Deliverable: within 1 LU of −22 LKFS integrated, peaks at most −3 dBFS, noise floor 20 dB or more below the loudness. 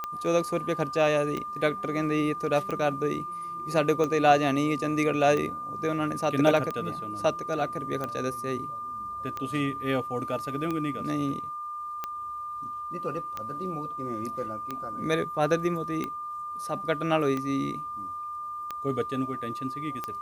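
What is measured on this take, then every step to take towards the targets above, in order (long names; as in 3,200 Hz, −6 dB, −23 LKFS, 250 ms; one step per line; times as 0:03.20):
number of clicks 16; interfering tone 1,200 Hz; level of the tone −33 dBFS; integrated loudness −28.5 LKFS; sample peak −7.0 dBFS; target loudness −22.0 LKFS
→ click removal
notch filter 1,200 Hz, Q 30
level +6.5 dB
brickwall limiter −3 dBFS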